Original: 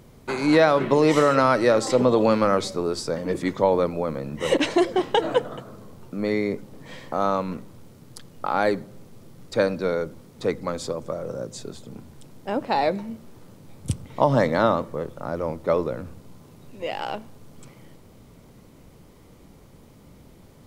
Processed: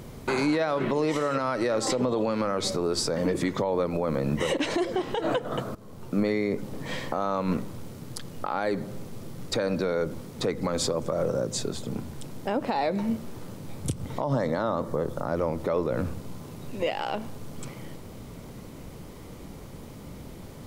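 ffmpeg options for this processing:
-filter_complex "[0:a]asettb=1/sr,asplit=3[a][b][c];[a]atrim=end=14.054[d];[b]atrim=start=14.05:end=15.28,asetpts=PTS-STARTPTS,afade=t=in:d=0.004:c=qsin,afade=t=out:st=1.226:d=0.004:c=qsin,equalizer=f=2.5k:w=1.7:g=-7[e];[c]atrim=start=15.276[f];[d][e]acrossfade=d=0.004:c1=hsin:c2=qsin[g];[g][f]acrossfade=d=0.004:c1=qsin:c2=hsin,asplit=2[h][i];[h]atrim=end=5.75,asetpts=PTS-STARTPTS,afade=t=out:st=5.746:d=0.004:c=hsin:silence=0.141254[j];[i]atrim=start=5.75,asetpts=PTS-STARTPTS,afade=t=in:d=0.52:silence=0.141254[k];[j][k]concat=n=2:v=0:a=1,acompressor=threshold=-25dB:ratio=10,alimiter=limit=-24dB:level=0:latency=1:release=112,volume=7.5dB"

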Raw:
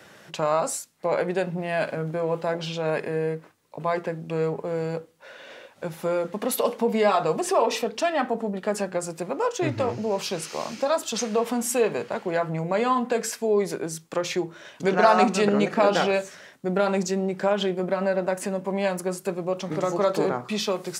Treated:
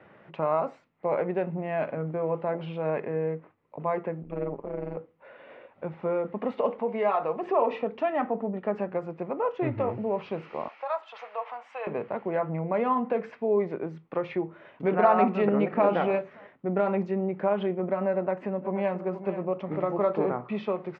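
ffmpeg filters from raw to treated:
-filter_complex "[0:a]asettb=1/sr,asplit=3[a][b][c];[a]atrim=end=4.234[d];[b]atrim=start=4.23:end=4.97,asetpts=PTS-STARTPTS,afade=t=in:d=0.004:c=qsin,afade=t=out:st=0.736:d=0.004:c=qsin,tremolo=f=140:d=0.919[e];[c]atrim=start=4.966[f];[d][e]acrossfade=d=0.004:c1=hsin:c2=qsin[g];[g][f]acrossfade=d=0.004:c1=qsin:c2=hsin,asettb=1/sr,asplit=3[h][i][j];[h]atrim=end=6.794[k];[i]atrim=start=6.79:end=7.43,asetpts=PTS-STARTPTS,afade=t=in:d=0.004:c=qsin,afade=t=out:st=0.636:d=0.004:c=qsin,highpass=f=450:p=1[l];[j]atrim=start=7.426[m];[k][l]acrossfade=d=0.004:c1=hsin:c2=qsin[n];[n][m]acrossfade=d=0.004:c1=qsin:c2=hsin,asettb=1/sr,asplit=3[o][p][q];[o]atrim=end=10.684[r];[p]atrim=start=10.68:end=11.87,asetpts=PTS-STARTPTS,afade=t=in:d=0.004:c=qsin,afade=t=out:st=1.186:d=0.004:c=qsin,highpass=f=710:w=0.5412,highpass=f=710:w=1.3066[s];[q]atrim=start=11.866[t];[r][s]acrossfade=d=0.004:c1=hsin:c2=qsin[u];[u][t]acrossfade=d=0.004:c1=qsin:c2=hsin,asplit=2[v][w];[w]afade=t=in:st=15.45:d=0.01,afade=t=out:st=15.89:d=0.01,aecho=0:1:290|580:0.141254|0.0353134[x];[v][x]amix=inputs=2:normalize=0,asplit=2[y][z];[z]afade=t=in:st=18.14:d=0.01,afade=t=out:st=18.99:d=0.01,aecho=0:1:480|960|1440|1920|2400:0.266073|0.133036|0.0665181|0.0332591|0.0166295[aa];[y][aa]amix=inputs=2:normalize=0,lowpass=f=2.2k:w=0.5412,lowpass=f=2.2k:w=1.3066,equalizer=f=1.6k:t=o:w=0.34:g=-7.5,volume=-2.5dB"

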